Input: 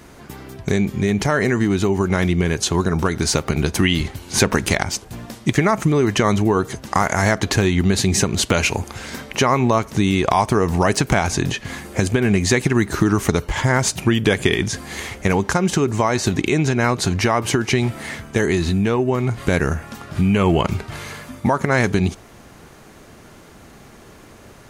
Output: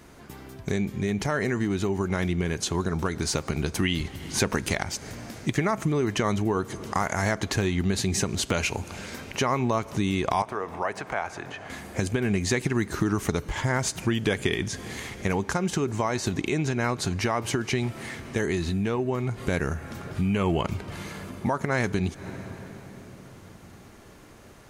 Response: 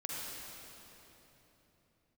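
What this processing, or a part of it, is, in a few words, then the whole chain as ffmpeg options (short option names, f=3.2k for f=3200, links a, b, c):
ducked reverb: -filter_complex "[0:a]asettb=1/sr,asplit=3[a][b][c];[a]atrim=end=10.424[d];[b]atrim=start=10.42:end=11.7,asetpts=PTS-STARTPTS,afade=t=in:d=0.004:c=qsin,afade=t=out:st=1.276:d=0.004:c=qsin,acrossover=split=470 2300:gain=0.141 1 0.178[e][f][g];[e][f][g]amix=inputs=3:normalize=0[h];[c]atrim=start=11.696[i];[d][h]acrossfade=d=0.004:c1=hsin:c2=qsin[j];[j][i]acrossfade=d=0.004:c1=qsin:c2=hsin,asplit=3[k][l][m];[1:a]atrim=start_sample=2205[n];[l][n]afir=irnorm=-1:irlink=0[o];[m]apad=whole_len=1088898[p];[o][p]sidechaincompress=threshold=-35dB:ratio=8:attack=45:release=137,volume=-8.5dB[q];[k][q]amix=inputs=2:normalize=0,volume=-8.5dB"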